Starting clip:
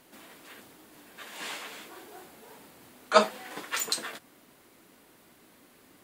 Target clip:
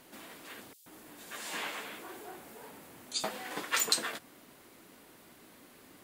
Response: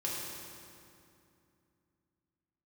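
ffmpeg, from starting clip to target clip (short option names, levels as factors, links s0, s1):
-filter_complex "[0:a]asettb=1/sr,asplit=3[s0][s1][s2];[s0]atrim=end=0.734[s3];[s1]atrim=start=0.73:end=3.24,asetpts=PTS-STARTPTS,afade=t=in:d=0.004:c=qsin,afade=t=out:st=2.506:d=0.004:c=qsin,acrossover=split=4100[s4][s5];[s4]adelay=130[s6];[s6][s5]amix=inputs=2:normalize=0,atrim=end_sample=110691[s7];[s2]atrim=start=3.236[s8];[s3][s7]acrossfade=d=0.004:c1=hsin:c2=qsin[s9];[s9][s8]acrossfade=d=0.004:c1=qsin:c2=hsin,volume=1.19"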